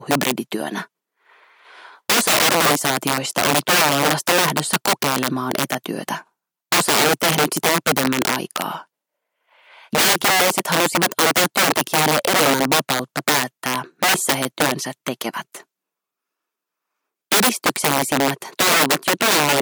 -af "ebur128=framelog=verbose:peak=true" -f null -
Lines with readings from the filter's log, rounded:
Integrated loudness:
  I:         -17.8 LUFS
  Threshold: -28.4 LUFS
Loudness range:
  LRA:         5.8 LU
  Threshold: -38.8 LUFS
  LRA low:   -22.5 LUFS
  LRA high:  -16.6 LUFS
True peak:
  Peak:       -1.8 dBFS